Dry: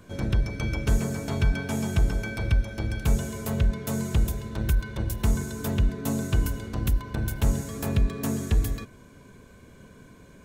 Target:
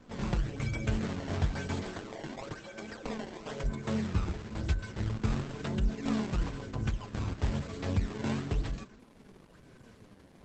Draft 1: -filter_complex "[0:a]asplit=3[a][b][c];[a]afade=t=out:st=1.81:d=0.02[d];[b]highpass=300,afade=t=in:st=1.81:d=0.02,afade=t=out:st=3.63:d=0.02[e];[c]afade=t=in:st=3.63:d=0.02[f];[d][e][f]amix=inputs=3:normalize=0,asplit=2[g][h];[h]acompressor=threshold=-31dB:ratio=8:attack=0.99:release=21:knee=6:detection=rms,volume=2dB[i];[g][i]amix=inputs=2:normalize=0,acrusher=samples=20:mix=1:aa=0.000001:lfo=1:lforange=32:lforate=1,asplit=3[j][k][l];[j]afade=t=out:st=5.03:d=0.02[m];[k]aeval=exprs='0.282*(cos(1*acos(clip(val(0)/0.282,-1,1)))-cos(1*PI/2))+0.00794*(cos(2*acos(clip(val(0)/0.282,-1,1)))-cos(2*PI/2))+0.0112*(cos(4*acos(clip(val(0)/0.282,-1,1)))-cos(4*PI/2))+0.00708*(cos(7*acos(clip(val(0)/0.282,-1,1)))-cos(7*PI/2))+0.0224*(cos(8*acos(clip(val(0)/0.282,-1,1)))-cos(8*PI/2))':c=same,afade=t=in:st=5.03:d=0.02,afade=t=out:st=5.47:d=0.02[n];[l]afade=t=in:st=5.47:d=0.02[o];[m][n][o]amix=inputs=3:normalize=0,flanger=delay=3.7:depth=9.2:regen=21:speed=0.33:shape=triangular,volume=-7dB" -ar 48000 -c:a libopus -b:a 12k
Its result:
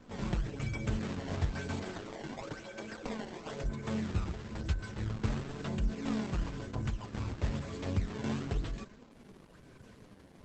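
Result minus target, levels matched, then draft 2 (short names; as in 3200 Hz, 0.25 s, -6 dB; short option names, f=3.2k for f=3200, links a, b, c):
compressor: peak gain reduction +9 dB
-filter_complex "[0:a]asplit=3[a][b][c];[a]afade=t=out:st=1.81:d=0.02[d];[b]highpass=300,afade=t=in:st=1.81:d=0.02,afade=t=out:st=3.63:d=0.02[e];[c]afade=t=in:st=3.63:d=0.02[f];[d][e][f]amix=inputs=3:normalize=0,asplit=2[g][h];[h]acompressor=threshold=-20.5dB:ratio=8:attack=0.99:release=21:knee=6:detection=rms,volume=2dB[i];[g][i]amix=inputs=2:normalize=0,acrusher=samples=20:mix=1:aa=0.000001:lfo=1:lforange=32:lforate=1,asplit=3[j][k][l];[j]afade=t=out:st=5.03:d=0.02[m];[k]aeval=exprs='0.282*(cos(1*acos(clip(val(0)/0.282,-1,1)))-cos(1*PI/2))+0.00794*(cos(2*acos(clip(val(0)/0.282,-1,1)))-cos(2*PI/2))+0.0112*(cos(4*acos(clip(val(0)/0.282,-1,1)))-cos(4*PI/2))+0.00708*(cos(7*acos(clip(val(0)/0.282,-1,1)))-cos(7*PI/2))+0.0224*(cos(8*acos(clip(val(0)/0.282,-1,1)))-cos(8*PI/2))':c=same,afade=t=in:st=5.03:d=0.02,afade=t=out:st=5.47:d=0.02[n];[l]afade=t=in:st=5.47:d=0.02[o];[m][n][o]amix=inputs=3:normalize=0,flanger=delay=3.7:depth=9.2:regen=21:speed=0.33:shape=triangular,volume=-7dB" -ar 48000 -c:a libopus -b:a 12k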